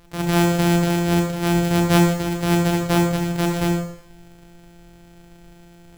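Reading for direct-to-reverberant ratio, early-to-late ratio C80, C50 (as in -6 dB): 0.0 dB, 7.5 dB, 4.0 dB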